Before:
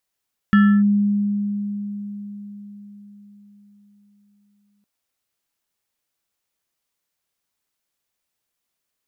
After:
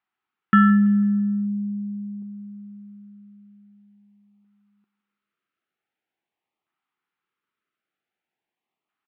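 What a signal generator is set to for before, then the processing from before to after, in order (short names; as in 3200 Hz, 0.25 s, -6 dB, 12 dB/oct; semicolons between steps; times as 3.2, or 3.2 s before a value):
FM tone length 4.31 s, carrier 204 Hz, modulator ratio 7.54, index 0.53, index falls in 0.30 s linear, decay 4.83 s, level -9 dB
LFO notch saw up 0.45 Hz 490–1600 Hz; speaker cabinet 160–2900 Hz, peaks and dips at 360 Hz +4 dB, 560 Hz -5 dB, 790 Hz +7 dB, 1300 Hz +8 dB; feedback echo 0.166 s, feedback 46%, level -19 dB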